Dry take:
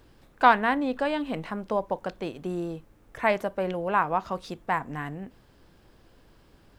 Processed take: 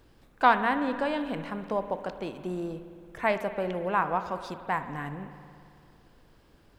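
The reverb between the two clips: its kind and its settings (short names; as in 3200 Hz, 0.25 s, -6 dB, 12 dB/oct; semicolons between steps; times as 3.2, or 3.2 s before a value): spring tank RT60 2.4 s, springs 55 ms, chirp 25 ms, DRR 10 dB; gain -2.5 dB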